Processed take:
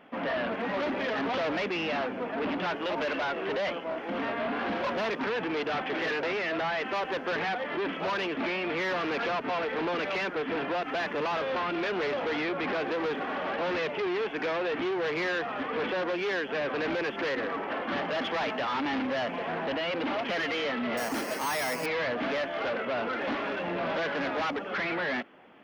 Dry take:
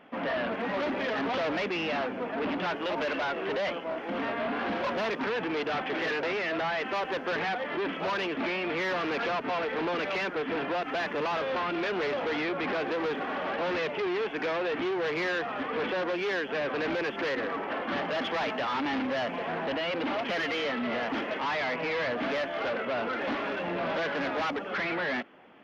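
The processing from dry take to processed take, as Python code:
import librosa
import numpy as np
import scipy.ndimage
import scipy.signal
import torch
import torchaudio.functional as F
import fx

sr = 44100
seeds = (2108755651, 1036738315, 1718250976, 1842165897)

y = fx.resample_bad(x, sr, factor=6, down='none', up='hold', at=(20.97, 21.86))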